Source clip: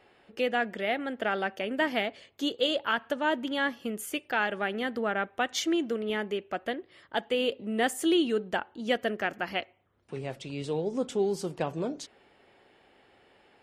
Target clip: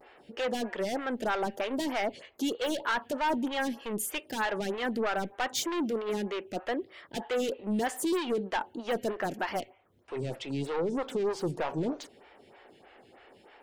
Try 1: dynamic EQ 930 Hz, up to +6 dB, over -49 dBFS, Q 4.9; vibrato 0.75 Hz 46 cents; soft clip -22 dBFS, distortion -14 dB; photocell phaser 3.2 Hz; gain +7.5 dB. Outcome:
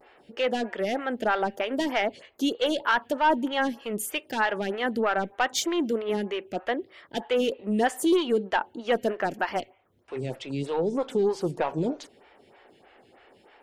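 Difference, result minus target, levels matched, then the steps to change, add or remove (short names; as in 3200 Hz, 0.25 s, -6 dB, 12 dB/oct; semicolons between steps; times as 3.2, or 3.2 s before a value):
soft clip: distortion -8 dB
change: soft clip -32 dBFS, distortion -6 dB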